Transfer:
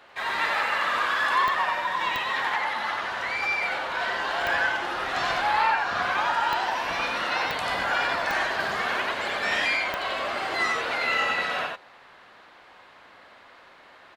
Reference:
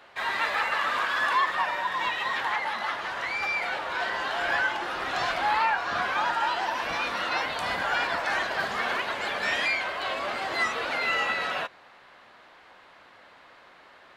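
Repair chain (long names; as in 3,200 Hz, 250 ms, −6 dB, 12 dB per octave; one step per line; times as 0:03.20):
click removal
echo removal 90 ms −3 dB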